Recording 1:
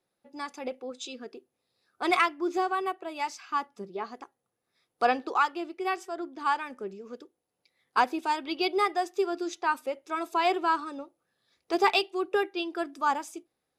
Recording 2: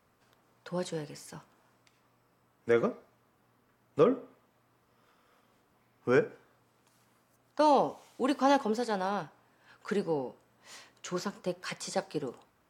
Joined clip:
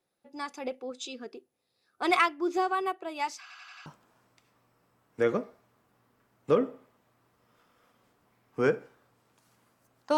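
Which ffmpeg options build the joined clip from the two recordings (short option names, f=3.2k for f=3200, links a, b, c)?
-filter_complex "[0:a]apad=whole_dur=10.17,atrim=end=10.17,asplit=5[a][b][c][d][e];[a]atrim=end=3.502[f];[b]atrim=start=3.408:end=3.502[g];[c]atrim=start=3.408:end=3.502[h];[d]atrim=start=3.408:end=3.502[i];[e]atrim=start=3.408:end=3.502[j];[1:a]atrim=start=1.348:end=7.66[k];[f][g]acrossfade=d=0.004:c1=hsin:c2=hsin[l];[l][h]acrossfade=d=0.004:c1=hsin:c2=hsin[m];[m][i]acrossfade=d=0.004:c1=hsin:c2=hsin[n];[n][j]acrossfade=d=0.004:c1=hsin:c2=hsin[o];[o][k]acrossfade=d=0.004:c1=hsin:c2=hsin"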